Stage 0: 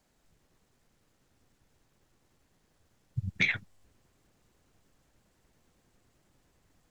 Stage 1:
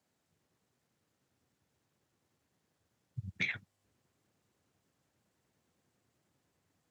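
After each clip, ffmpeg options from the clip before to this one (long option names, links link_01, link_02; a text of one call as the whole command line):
ffmpeg -i in.wav -af "highpass=frequency=82:width=0.5412,highpass=frequency=82:width=1.3066,volume=-7.5dB" out.wav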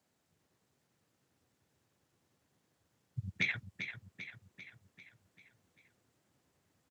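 ffmpeg -i in.wav -af "aecho=1:1:394|788|1182|1576|1970|2364:0.355|0.192|0.103|0.0559|0.0302|0.0163,volume=1.5dB" out.wav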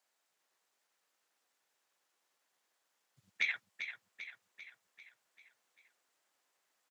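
ffmpeg -i in.wav -af "highpass=790" out.wav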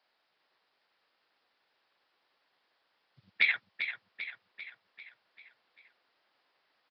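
ffmpeg -i in.wav -af "aresample=11025,aresample=44100,volume=7.5dB" out.wav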